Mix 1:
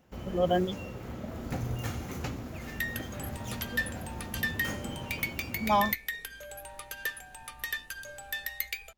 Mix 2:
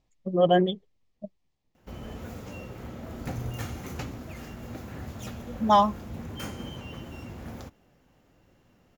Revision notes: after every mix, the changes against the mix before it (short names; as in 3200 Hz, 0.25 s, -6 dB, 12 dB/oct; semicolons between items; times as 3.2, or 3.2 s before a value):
speech +6.0 dB; first sound: entry +1.75 s; second sound: muted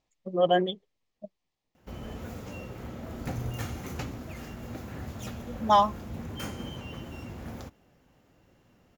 speech: add low shelf 260 Hz -11 dB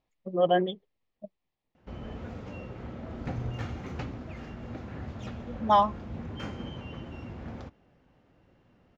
master: add air absorption 180 m